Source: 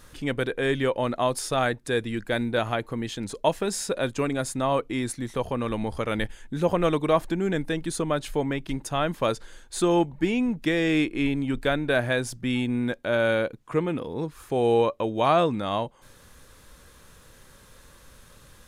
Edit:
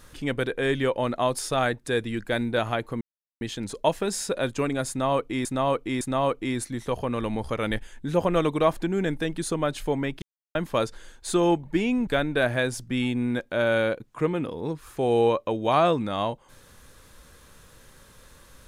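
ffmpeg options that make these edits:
-filter_complex "[0:a]asplit=7[s0][s1][s2][s3][s4][s5][s6];[s0]atrim=end=3.01,asetpts=PTS-STARTPTS,afade=t=out:st=3.006:d=0.004:c=hsin,apad=pad_dur=0.4[s7];[s1]atrim=start=3.01:end=5.052,asetpts=PTS-STARTPTS,afade=t=in:d=0.004:c=hsin[s8];[s2]atrim=start=4.488:end=5.052[s9];[s3]atrim=start=4.488:end=8.7,asetpts=PTS-STARTPTS,afade=t=out:st=4.208:d=0.004:c=hsin[s10];[s4]atrim=start=8.7:end=9.03,asetpts=PTS-STARTPTS,volume=0[s11];[s5]atrim=start=9.03:end=10.552,asetpts=PTS-STARTPTS,afade=t=in:d=0.004:c=hsin[s12];[s6]atrim=start=11.598[s13];[s7][s8]concat=n=2:v=0:a=1[s14];[s14][s9]acrossfade=d=0.004:c1=hsin:c2=hsin[s15];[s10][s11][s12]concat=n=3:v=0:a=1[s16];[s15][s16]acrossfade=d=0.004:c1=hsin:c2=hsin[s17];[s17][s13]acrossfade=d=0.004:c1=hsin:c2=hsin"

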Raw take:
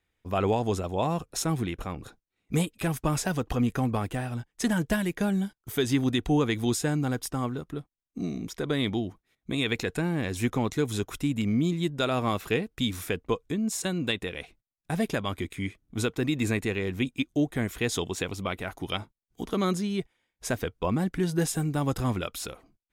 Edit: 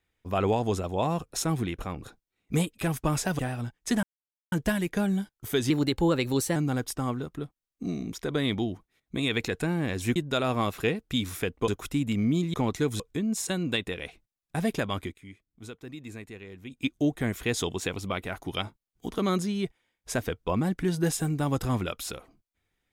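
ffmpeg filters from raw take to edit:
-filter_complex "[0:a]asplit=11[s0][s1][s2][s3][s4][s5][s6][s7][s8][s9][s10];[s0]atrim=end=3.392[s11];[s1]atrim=start=4.118:end=4.76,asetpts=PTS-STARTPTS,afade=t=out:st=0.638:d=0.004:c=hsin,apad=pad_dur=0.49[s12];[s2]atrim=start=4.76:end=5.944,asetpts=PTS-STARTPTS,afade=t=in:d=0.004:c=hsin[s13];[s3]atrim=start=5.94:end=6.91,asetpts=PTS-STARTPTS,asetrate=49833,aresample=44100[s14];[s4]atrim=start=6.906:end=10.512[s15];[s5]atrim=start=11.828:end=13.352[s16];[s6]atrim=start=10.968:end=11.832[s17];[s7]atrim=start=10.508:end=10.972[s18];[s8]atrim=start=13.348:end=15.51,asetpts=PTS-STARTPTS,afade=t=out:st=2.022:d=0.14:silence=0.188365[s19];[s9]atrim=start=15.51:end=17.05,asetpts=PTS-STARTPTS,volume=0.188[s20];[s10]atrim=start=17.05,asetpts=PTS-STARTPTS,afade=t=in:d=0.14:silence=0.188365[s21];[s12][s13]concat=n=2:v=0:a=1[s22];[s11][s22]acrossfade=d=0.004:c1=hsin:c2=hsin[s23];[s23][s14]acrossfade=d=0.004:c1=hsin:c2=hsin[s24];[s24][s15]acrossfade=d=0.004:c1=hsin:c2=hsin[s25];[s25][s16]acrossfade=d=0.004:c1=hsin:c2=hsin[s26];[s26][s17]acrossfade=d=0.004:c1=hsin:c2=hsin[s27];[s27][s18]acrossfade=d=0.004:c1=hsin:c2=hsin[s28];[s19][s20][s21]concat=n=3:v=0:a=1[s29];[s28][s29]acrossfade=d=0.004:c1=hsin:c2=hsin"

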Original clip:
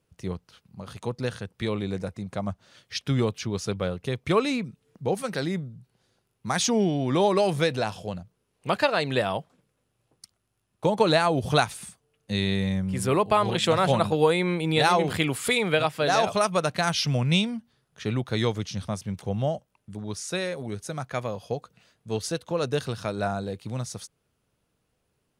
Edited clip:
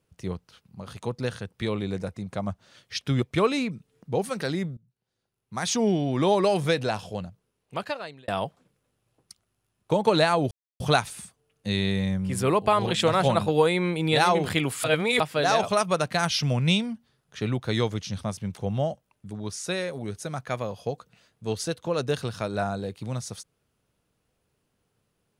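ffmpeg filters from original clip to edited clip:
-filter_complex "[0:a]asplit=7[s0][s1][s2][s3][s4][s5][s6];[s0]atrim=end=3.222[s7];[s1]atrim=start=4.148:end=5.7,asetpts=PTS-STARTPTS,afade=t=out:st=1.548:d=0.004:c=hsin:silence=0.112202[s8];[s2]atrim=start=5.7:end=9.21,asetpts=PTS-STARTPTS,afade=t=in:d=1.08:c=qua:silence=0.112202,afade=t=out:st=2.48:d=1.03[s9];[s3]atrim=start=9.21:end=11.44,asetpts=PTS-STARTPTS,afade=t=in:d=0.004:c=hsin,afade=t=out:st=2.226:d=0.004:c=hsin,apad=pad_dur=0.29[s10];[s4]atrim=start=11.44:end=15.482,asetpts=PTS-STARTPTS,afade=t=in:d=0.004:c=hsin[s11];[s5]atrim=start=15.478:end=15.842,asetpts=PTS-STARTPTS,areverse[s12];[s6]atrim=start=15.838[s13];[s8][s9][s10][s11]concat=n=4:v=0:a=1[s14];[s7][s14]acrossfade=d=0.004:c1=hsin:c2=hsin[s15];[s15][s12]acrossfade=d=0.004:c1=hsin:c2=hsin[s16];[s16][s13]acrossfade=d=0.004:c1=hsin:c2=hsin"

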